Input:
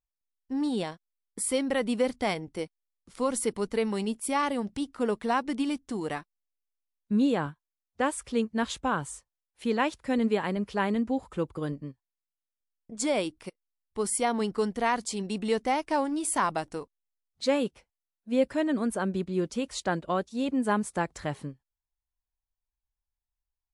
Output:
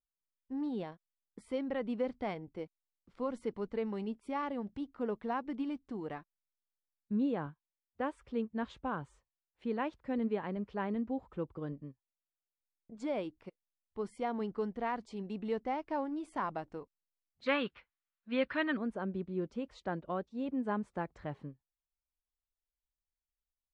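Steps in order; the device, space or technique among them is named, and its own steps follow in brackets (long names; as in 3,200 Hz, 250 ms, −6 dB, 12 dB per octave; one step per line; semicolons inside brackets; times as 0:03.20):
phone in a pocket (low-pass filter 3,700 Hz 12 dB per octave; high-shelf EQ 2,000 Hz −9.5 dB)
0:17.46–0:18.77: flat-topped bell 2,200 Hz +16 dB 2.4 octaves
level −7.5 dB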